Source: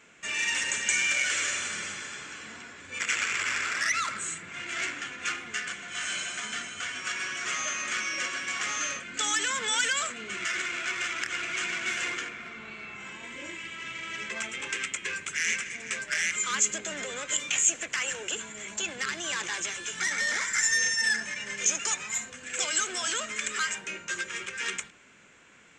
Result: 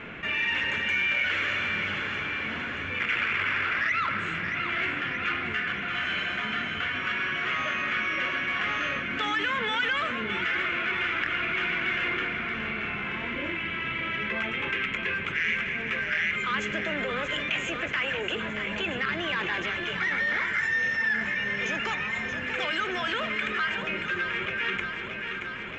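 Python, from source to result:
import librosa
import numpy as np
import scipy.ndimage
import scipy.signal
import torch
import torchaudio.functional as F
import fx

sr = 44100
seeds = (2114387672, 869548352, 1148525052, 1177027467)

y = scipy.signal.sosfilt(scipy.signal.butter(4, 3000.0, 'lowpass', fs=sr, output='sos'), x)
y = fx.low_shelf(y, sr, hz=180.0, db=10.0)
y = fx.echo_feedback(y, sr, ms=627, feedback_pct=57, wet_db=-11.0)
y = fx.env_flatten(y, sr, amount_pct=50)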